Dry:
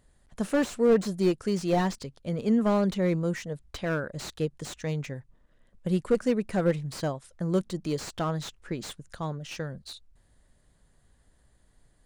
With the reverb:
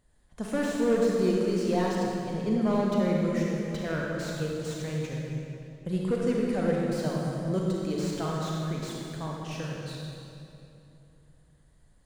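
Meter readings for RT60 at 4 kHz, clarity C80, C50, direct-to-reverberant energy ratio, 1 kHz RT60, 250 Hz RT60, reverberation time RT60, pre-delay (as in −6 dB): 2.1 s, 0.0 dB, −1.5 dB, −3.0 dB, 2.6 s, 3.4 s, 2.9 s, 31 ms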